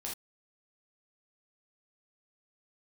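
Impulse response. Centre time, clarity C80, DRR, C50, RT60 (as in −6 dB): 31 ms, 16.5 dB, −3.5 dB, 4.5 dB, non-exponential decay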